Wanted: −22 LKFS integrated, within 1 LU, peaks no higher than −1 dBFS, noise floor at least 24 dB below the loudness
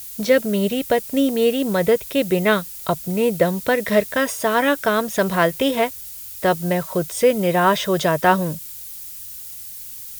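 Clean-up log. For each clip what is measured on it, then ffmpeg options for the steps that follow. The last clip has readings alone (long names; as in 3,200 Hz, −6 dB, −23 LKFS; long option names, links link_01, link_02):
background noise floor −35 dBFS; target noise floor −44 dBFS; integrated loudness −19.5 LKFS; sample peak −2.5 dBFS; target loudness −22.0 LKFS
→ -af "afftdn=noise_reduction=9:noise_floor=-35"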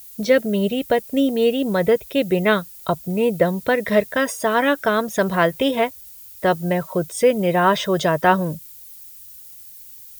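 background noise floor −42 dBFS; target noise floor −44 dBFS
→ -af "afftdn=noise_reduction=6:noise_floor=-42"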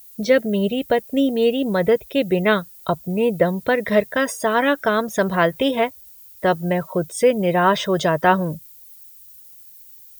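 background noise floor −45 dBFS; integrated loudness −20.0 LKFS; sample peak −2.5 dBFS; target loudness −22.0 LKFS
→ -af "volume=-2dB"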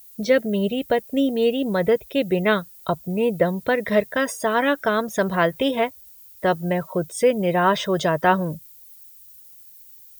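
integrated loudness −22.0 LKFS; sample peak −4.5 dBFS; background noise floor −47 dBFS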